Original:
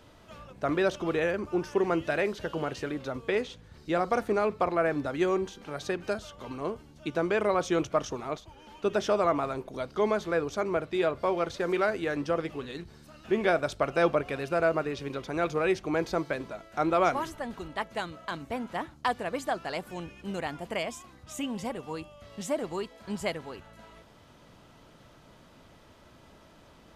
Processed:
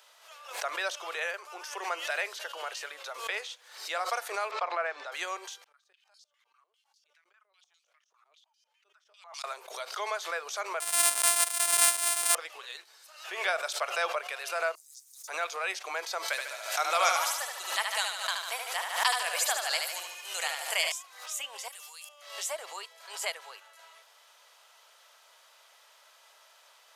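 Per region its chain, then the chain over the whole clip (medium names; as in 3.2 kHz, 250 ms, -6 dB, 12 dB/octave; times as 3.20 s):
4.51–5.12 s: distance through air 130 m + three bands expanded up and down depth 40%
5.64–9.44 s: differentiator + compression 3:1, threshold -55 dBFS + step-sequenced band-pass 10 Hz 210–4800 Hz
10.80–12.35 s: sorted samples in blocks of 128 samples + peaking EQ 9.2 kHz +15 dB 0.44 oct
14.75–15.28 s: inverse Chebyshev band-stop 250–2900 Hz, stop band 50 dB + modulation noise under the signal 30 dB + level flattener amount 50%
16.28–20.92 s: treble shelf 2.8 kHz +11 dB + feedback delay 74 ms, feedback 55%, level -4.5 dB
21.68–22.09 s: differentiator + level flattener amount 100%
whole clip: Bessel high-pass 960 Hz, order 8; treble shelf 4.4 kHz +9 dB; swell ahead of each attack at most 87 dB/s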